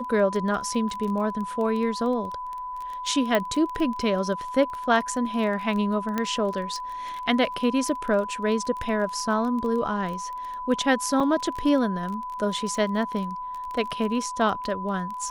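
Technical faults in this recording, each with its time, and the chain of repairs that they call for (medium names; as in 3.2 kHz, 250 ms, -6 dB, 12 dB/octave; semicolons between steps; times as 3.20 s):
crackle 20 per s -30 dBFS
whine 1 kHz -31 dBFS
3.35 s: pop -10 dBFS
6.18 s: pop -12 dBFS
11.20–11.21 s: dropout 5 ms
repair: de-click; band-stop 1 kHz, Q 30; interpolate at 11.20 s, 5 ms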